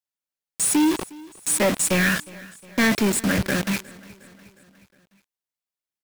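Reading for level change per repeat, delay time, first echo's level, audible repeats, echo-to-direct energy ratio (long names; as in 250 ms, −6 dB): −5.0 dB, 360 ms, −22.0 dB, 3, −20.5 dB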